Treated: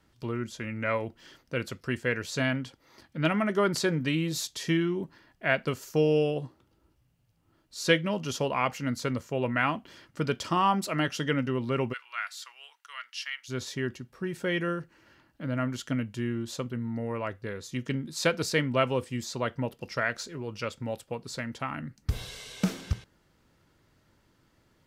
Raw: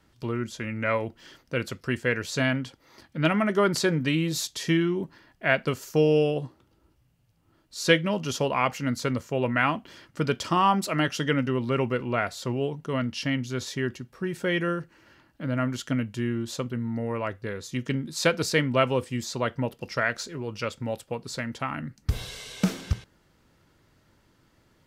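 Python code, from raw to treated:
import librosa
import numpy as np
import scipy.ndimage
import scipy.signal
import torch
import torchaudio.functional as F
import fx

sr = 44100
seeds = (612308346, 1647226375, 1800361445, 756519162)

y = fx.highpass(x, sr, hz=1300.0, slope=24, at=(11.92, 13.48), fade=0.02)
y = y * librosa.db_to_amplitude(-3.0)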